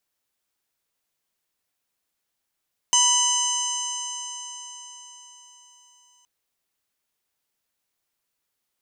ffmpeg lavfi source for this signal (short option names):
-f lavfi -i "aevalsrc='0.0708*pow(10,-3*t/4.6)*sin(2*PI*979.71*t)+0.0119*pow(10,-3*t/4.6)*sin(2*PI*1969.64*t)+0.1*pow(10,-3*t/4.6)*sin(2*PI*2979.85*t)+0.0106*pow(10,-3*t/4.6)*sin(2*PI*4020.04*t)+0.0316*pow(10,-3*t/4.6)*sin(2*PI*5099.45*t)+0.133*pow(10,-3*t/4.6)*sin(2*PI*6226.72*t)+0.0562*pow(10,-3*t/4.6)*sin(2*PI*7409.83*t)+0.0501*pow(10,-3*t/4.6)*sin(2*PI*8656.05*t)':d=3.32:s=44100"